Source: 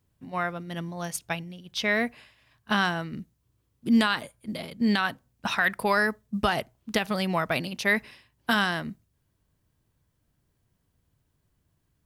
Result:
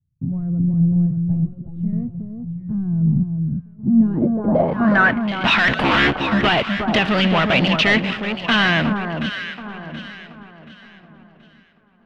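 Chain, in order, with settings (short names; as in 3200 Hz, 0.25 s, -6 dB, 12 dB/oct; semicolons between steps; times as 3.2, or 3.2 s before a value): 5.67–6.22 cycle switcher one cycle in 3, inverted; high shelf 4300 Hz -7 dB; in parallel at -2 dB: compressor, threshold -31 dBFS, peak gain reduction 13.5 dB; on the sum: sample leveller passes 3; limiter -15 dBFS, peak gain reduction 6 dB; sample leveller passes 2; on a send: echo with dull and thin repeats by turns 0.364 s, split 1300 Hz, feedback 59%, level -5 dB; on the sum: low-pass sweep 140 Hz -> 3000 Hz, 3.79–5.3; darkening echo 1.169 s, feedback 36%, low-pass 990 Hz, level -19.5 dB; 1.45–1.93 ensemble effect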